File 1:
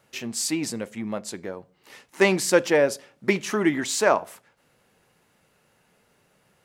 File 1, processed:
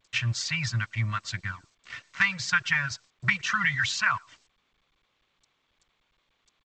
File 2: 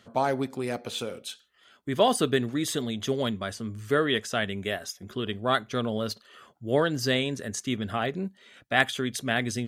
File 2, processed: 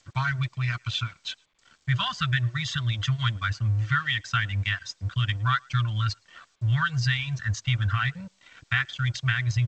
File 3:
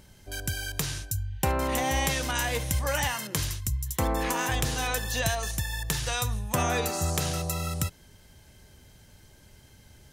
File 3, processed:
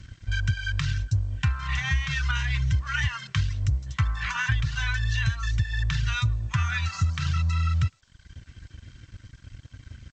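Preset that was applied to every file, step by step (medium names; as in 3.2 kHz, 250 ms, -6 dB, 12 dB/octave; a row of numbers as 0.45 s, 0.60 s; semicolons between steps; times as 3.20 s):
reverb removal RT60 0.73 s; elliptic band-stop 120–1300 Hz, stop band 70 dB; tone controls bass +6 dB, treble -5 dB; compression 10:1, threshold -32 dBFS; crossover distortion -57.5 dBFS; distance through air 140 m; comb of notches 420 Hz; speakerphone echo 110 ms, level -29 dB; G.722 64 kbps 16 kHz; normalise loudness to -27 LUFS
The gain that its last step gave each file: +15.0 dB, +14.0 dB, +13.0 dB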